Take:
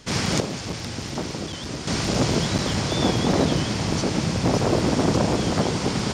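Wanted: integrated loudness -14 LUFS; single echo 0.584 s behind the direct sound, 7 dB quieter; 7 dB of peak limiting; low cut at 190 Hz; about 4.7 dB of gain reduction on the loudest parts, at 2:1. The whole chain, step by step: HPF 190 Hz; compressor 2:1, threshold -26 dBFS; limiter -18.5 dBFS; echo 0.584 s -7 dB; gain +14.5 dB

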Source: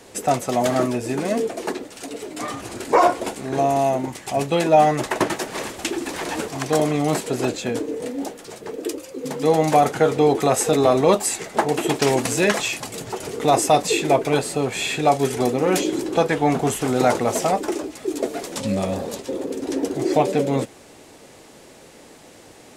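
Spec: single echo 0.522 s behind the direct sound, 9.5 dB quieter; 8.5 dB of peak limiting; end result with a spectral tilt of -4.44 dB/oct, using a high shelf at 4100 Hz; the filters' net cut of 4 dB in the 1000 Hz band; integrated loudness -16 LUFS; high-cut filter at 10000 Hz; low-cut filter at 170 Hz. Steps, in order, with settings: HPF 170 Hz; LPF 10000 Hz; bell 1000 Hz -6 dB; high shelf 4100 Hz -5 dB; limiter -14.5 dBFS; echo 0.522 s -9.5 dB; gain +10 dB

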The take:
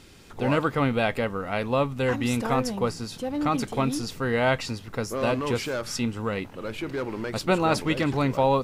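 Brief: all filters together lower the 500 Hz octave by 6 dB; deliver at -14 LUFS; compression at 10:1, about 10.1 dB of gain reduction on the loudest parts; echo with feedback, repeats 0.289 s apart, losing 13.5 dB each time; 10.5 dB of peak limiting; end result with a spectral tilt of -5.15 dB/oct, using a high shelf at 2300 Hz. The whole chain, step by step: bell 500 Hz -7 dB; high shelf 2300 Hz -3.5 dB; compressor 10:1, threshold -31 dBFS; limiter -31.5 dBFS; feedback echo 0.289 s, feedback 21%, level -13.5 dB; gain +26.5 dB

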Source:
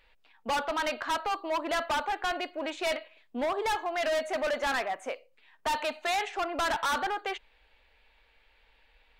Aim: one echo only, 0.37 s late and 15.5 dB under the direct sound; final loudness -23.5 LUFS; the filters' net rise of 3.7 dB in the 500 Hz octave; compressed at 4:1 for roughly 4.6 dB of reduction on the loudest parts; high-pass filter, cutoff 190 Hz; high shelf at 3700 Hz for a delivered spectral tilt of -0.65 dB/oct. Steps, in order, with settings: HPF 190 Hz; bell 500 Hz +5 dB; high shelf 3700 Hz +6 dB; compressor 4:1, threshold -29 dBFS; echo 0.37 s -15.5 dB; gain +9 dB

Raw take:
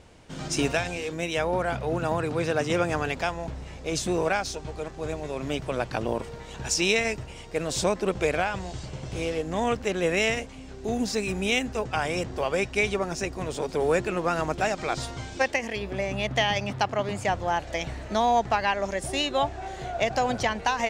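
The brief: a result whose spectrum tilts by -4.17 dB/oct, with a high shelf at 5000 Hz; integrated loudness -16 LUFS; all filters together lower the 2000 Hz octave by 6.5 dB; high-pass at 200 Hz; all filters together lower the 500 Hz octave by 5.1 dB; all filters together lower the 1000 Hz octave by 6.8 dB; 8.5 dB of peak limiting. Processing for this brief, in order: HPF 200 Hz; bell 500 Hz -4 dB; bell 1000 Hz -6.5 dB; bell 2000 Hz -5 dB; high shelf 5000 Hz -7.5 dB; gain +19.5 dB; limiter -4 dBFS

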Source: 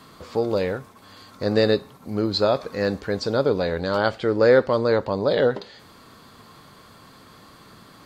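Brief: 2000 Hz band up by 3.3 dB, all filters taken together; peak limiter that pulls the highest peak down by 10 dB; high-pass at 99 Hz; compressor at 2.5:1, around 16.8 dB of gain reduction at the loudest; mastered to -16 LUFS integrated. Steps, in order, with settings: HPF 99 Hz; bell 2000 Hz +4.5 dB; compressor 2.5:1, threshold -37 dBFS; gain +24.5 dB; limiter -3 dBFS

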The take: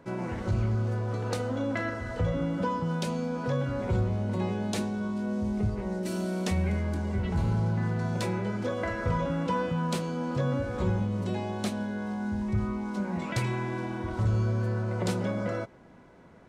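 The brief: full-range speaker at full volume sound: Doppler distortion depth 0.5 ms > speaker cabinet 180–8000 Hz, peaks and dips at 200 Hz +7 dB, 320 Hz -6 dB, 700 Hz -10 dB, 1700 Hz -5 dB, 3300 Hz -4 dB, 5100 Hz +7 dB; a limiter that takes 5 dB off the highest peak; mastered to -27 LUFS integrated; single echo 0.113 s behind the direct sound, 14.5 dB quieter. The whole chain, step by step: limiter -22.5 dBFS; echo 0.113 s -14.5 dB; Doppler distortion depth 0.5 ms; speaker cabinet 180–8000 Hz, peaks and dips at 200 Hz +7 dB, 320 Hz -6 dB, 700 Hz -10 dB, 1700 Hz -5 dB, 3300 Hz -4 dB, 5100 Hz +7 dB; gain +6 dB

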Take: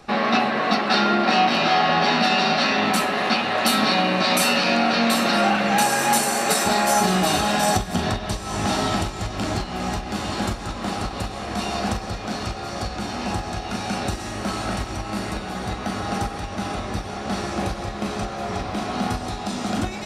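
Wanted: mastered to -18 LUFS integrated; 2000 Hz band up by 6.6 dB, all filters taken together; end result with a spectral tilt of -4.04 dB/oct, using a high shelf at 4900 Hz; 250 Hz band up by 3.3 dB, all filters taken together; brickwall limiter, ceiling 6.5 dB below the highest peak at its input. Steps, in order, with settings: bell 250 Hz +4 dB; bell 2000 Hz +9 dB; high shelf 4900 Hz -4 dB; gain +3 dB; limiter -7 dBFS

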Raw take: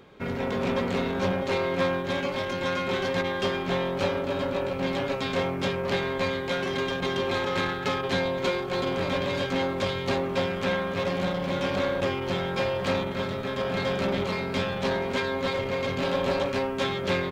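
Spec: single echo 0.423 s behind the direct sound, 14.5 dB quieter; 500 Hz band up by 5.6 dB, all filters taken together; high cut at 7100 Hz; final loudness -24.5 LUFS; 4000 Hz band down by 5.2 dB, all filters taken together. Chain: LPF 7100 Hz; bell 500 Hz +6.5 dB; bell 4000 Hz -6.5 dB; echo 0.423 s -14.5 dB; gain -0.5 dB

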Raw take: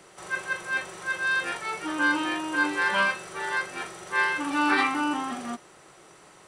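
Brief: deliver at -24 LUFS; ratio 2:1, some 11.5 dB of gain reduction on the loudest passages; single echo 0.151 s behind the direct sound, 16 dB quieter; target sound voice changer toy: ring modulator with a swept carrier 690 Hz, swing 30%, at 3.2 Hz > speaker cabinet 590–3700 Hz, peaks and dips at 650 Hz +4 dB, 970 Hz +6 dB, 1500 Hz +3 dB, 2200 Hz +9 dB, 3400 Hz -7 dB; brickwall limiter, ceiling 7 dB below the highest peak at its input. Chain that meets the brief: compressor 2:1, threshold -41 dBFS; limiter -28.5 dBFS; echo 0.151 s -16 dB; ring modulator with a swept carrier 690 Hz, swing 30%, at 3.2 Hz; speaker cabinet 590–3700 Hz, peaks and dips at 650 Hz +4 dB, 970 Hz +6 dB, 1500 Hz +3 dB, 2200 Hz +9 dB, 3400 Hz -7 dB; gain +12 dB

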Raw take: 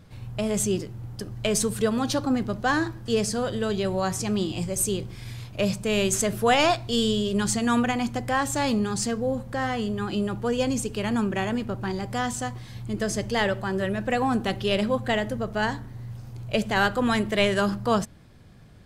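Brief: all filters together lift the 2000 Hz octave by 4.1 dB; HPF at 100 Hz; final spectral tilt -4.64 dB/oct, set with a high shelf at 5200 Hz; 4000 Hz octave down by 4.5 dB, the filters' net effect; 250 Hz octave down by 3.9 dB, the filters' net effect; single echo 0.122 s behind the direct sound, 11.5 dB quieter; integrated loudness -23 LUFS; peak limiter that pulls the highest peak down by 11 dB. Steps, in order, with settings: HPF 100 Hz; bell 250 Hz -4.5 dB; bell 2000 Hz +8 dB; bell 4000 Hz -8 dB; high shelf 5200 Hz -7.5 dB; limiter -18.5 dBFS; echo 0.122 s -11.5 dB; gain +6 dB

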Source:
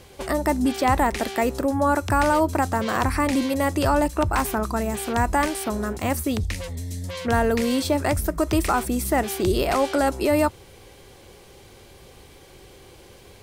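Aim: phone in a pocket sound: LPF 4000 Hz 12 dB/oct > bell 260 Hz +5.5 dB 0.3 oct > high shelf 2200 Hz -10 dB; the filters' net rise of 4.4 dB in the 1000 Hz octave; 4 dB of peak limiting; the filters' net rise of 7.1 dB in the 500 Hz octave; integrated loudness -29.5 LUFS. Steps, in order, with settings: bell 500 Hz +8 dB; bell 1000 Hz +4.5 dB; limiter -6.5 dBFS; LPF 4000 Hz 12 dB/oct; bell 260 Hz +5.5 dB 0.3 oct; high shelf 2200 Hz -10 dB; gain -10.5 dB

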